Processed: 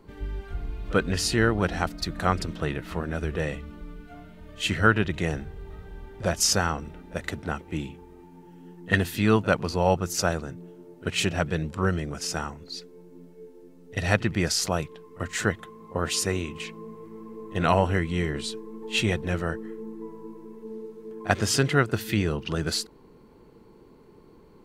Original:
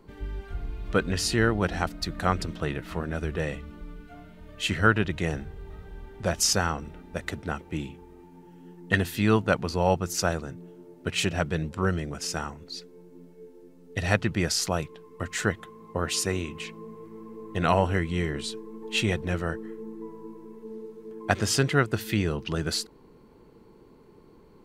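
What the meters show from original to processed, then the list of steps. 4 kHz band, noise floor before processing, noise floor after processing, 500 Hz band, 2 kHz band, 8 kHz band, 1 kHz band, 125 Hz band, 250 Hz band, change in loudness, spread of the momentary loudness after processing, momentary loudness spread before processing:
+1.0 dB, -54 dBFS, -53 dBFS, +1.0 dB, +1.0 dB, +1.0 dB, +1.0 dB, +1.0 dB, +1.0 dB, +1.0 dB, 19 LU, 18 LU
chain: pre-echo 41 ms -19.5 dB; gain +1 dB

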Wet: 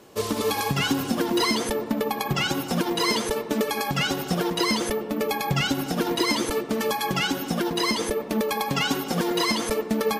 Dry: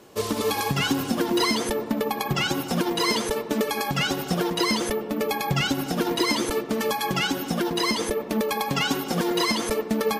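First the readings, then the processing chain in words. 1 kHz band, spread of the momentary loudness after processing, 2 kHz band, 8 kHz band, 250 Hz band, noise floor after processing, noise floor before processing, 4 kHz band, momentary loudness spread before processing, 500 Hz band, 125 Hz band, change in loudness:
0.0 dB, 3 LU, 0.0 dB, 0.0 dB, 0.0 dB, -34 dBFS, -34 dBFS, 0.0 dB, 4 LU, 0.0 dB, 0.0 dB, 0.0 dB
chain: de-hum 358.6 Hz, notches 26

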